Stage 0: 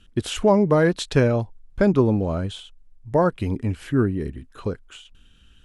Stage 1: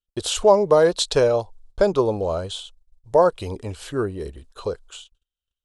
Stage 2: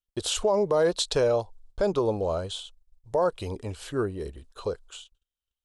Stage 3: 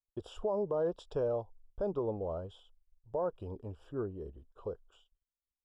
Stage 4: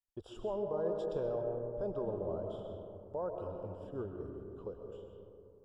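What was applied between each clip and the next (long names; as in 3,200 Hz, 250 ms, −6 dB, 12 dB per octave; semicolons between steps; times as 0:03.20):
noise gate −45 dBFS, range −38 dB; graphic EQ with 10 bands 125 Hz −8 dB, 250 Hz −11 dB, 500 Hz +7 dB, 1,000 Hz +4 dB, 2,000 Hz −8 dB, 4,000 Hz +8 dB, 8,000 Hz +7 dB
brickwall limiter −11.5 dBFS, peak gain reduction 8 dB; level −3.5 dB
moving average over 21 samples; level −8.5 dB
convolution reverb RT60 2.8 s, pre-delay 85 ms, DRR 3 dB; level −4.5 dB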